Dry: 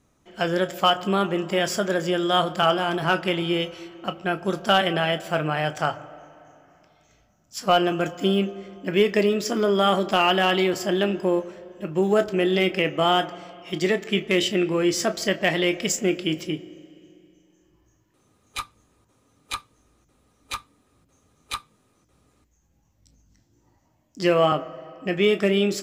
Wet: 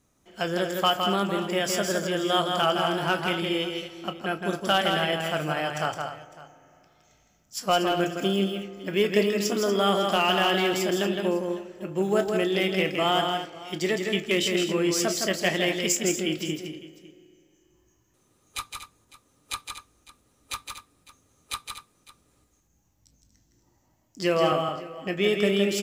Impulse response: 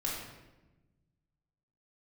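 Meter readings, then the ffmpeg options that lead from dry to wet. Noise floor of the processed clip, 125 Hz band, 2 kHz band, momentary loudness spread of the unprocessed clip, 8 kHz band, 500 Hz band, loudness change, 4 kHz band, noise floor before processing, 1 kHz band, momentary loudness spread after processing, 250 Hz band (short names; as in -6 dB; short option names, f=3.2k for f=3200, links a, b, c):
-67 dBFS, -3.0 dB, -2.0 dB, 14 LU, +2.0 dB, -3.0 dB, -2.5 dB, -1.0 dB, -65 dBFS, -3.0 dB, 13 LU, -3.0 dB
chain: -filter_complex "[0:a]highshelf=f=5.3k:g=8,asplit=2[a][b];[b]aecho=0:1:163|237|554:0.562|0.282|0.112[c];[a][c]amix=inputs=2:normalize=0,volume=-4.5dB"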